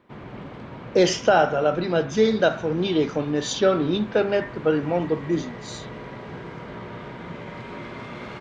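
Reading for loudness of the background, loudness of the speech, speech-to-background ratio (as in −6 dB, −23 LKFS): −38.0 LKFS, −22.5 LKFS, 15.5 dB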